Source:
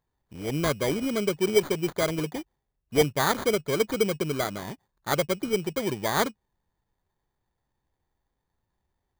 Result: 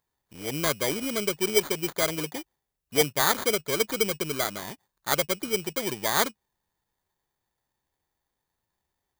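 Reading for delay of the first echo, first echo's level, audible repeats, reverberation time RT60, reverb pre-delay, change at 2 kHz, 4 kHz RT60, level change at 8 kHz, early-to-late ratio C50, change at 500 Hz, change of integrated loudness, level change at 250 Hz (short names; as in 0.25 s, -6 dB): none, none, none, none, none, +2.0 dB, none, +6.0 dB, none, -2.0 dB, +0.5 dB, -4.0 dB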